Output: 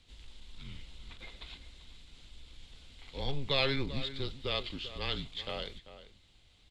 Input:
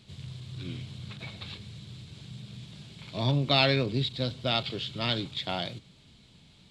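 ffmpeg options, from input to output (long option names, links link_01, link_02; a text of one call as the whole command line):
ffmpeg -i in.wav -filter_complex "[0:a]asplit=2[link_01][link_02];[link_02]adelay=390.7,volume=-13dB,highshelf=frequency=4000:gain=-8.79[link_03];[link_01][link_03]amix=inputs=2:normalize=0,afreqshift=-140,volume=-6dB" out.wav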